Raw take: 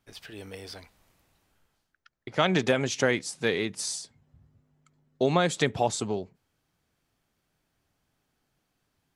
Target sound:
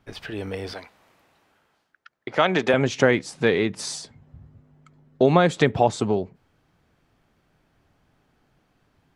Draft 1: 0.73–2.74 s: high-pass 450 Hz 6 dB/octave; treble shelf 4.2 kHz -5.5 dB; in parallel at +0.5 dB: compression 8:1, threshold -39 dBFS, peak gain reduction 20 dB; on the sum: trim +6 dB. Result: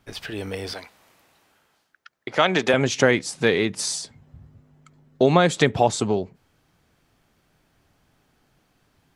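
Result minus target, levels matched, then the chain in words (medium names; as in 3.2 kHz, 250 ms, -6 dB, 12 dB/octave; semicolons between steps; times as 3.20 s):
8 kHz band +6.0 dB
0.73–2.74 s: high-pass 450 Hz 6 dB/octave; treble shelf 4.2 kHz -15.5 dB; in parallel at +0.5 dB: compression 8:1, threshold -39 dBFS, peak gain reduction 20 dB; on the sum: trim +6 dB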